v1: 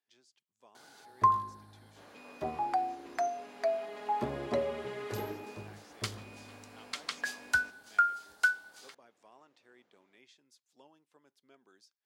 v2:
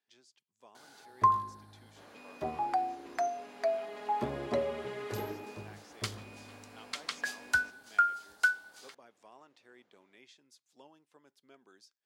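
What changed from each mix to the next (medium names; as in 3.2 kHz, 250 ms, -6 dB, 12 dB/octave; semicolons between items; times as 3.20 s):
speech +3.0 dB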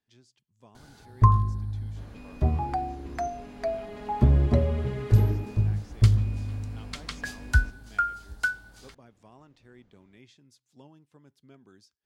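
master: remove high-pass 460 Hz 12 dB/octave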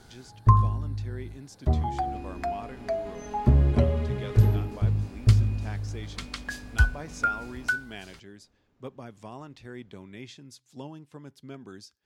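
speech +11.5 dB; first sound: entry -0.75 s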